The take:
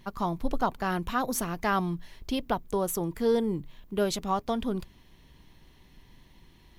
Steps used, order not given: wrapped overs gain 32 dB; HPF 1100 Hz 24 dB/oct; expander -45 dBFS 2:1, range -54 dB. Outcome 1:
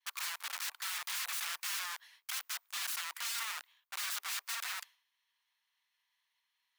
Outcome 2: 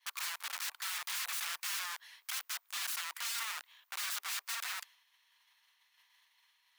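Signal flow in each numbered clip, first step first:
wrapped overs > HPF > expander; wrapped overs > expander > HPF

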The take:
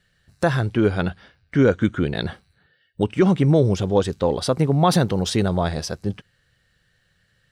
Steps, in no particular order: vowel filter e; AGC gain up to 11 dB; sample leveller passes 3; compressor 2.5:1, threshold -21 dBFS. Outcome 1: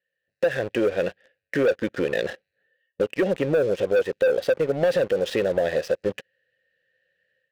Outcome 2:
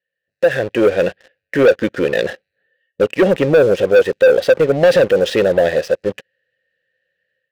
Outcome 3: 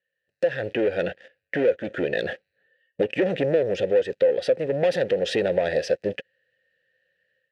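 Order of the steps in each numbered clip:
AGC > vowel filter > sample leveller > compressor; vowel filter > compressor > AGC > sample leveller; sample leveller > vowel filter > AGC > compressor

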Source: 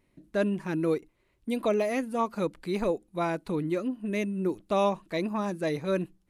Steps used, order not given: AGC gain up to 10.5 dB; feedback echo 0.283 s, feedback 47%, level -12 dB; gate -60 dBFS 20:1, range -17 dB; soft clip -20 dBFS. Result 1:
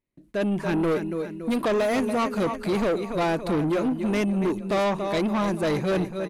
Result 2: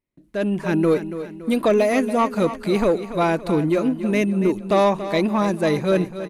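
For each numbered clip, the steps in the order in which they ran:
feedback echo > gate > AGC > soft clip; soft clip > feedback echo > AGC > gate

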